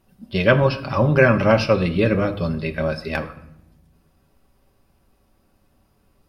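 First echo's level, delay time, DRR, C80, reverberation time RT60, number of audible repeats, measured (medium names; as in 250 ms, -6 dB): no echo, no echo, 4.5 dB, 16.5 dB, 0.80 s, no echo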